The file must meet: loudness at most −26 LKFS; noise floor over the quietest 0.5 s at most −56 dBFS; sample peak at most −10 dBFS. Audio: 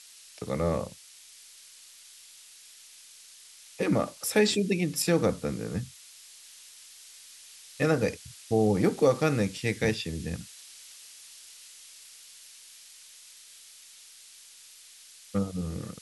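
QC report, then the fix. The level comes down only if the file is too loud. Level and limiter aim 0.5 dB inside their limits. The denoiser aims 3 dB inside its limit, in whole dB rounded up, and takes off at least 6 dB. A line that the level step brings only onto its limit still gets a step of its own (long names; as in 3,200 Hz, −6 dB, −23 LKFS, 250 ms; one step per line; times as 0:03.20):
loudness −28.0 LKFS: in spec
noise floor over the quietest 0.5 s −52 dBFS: out of spec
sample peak −10.5 dBFS: in spec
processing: broadband denoise 7 dB, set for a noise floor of −52 dBFS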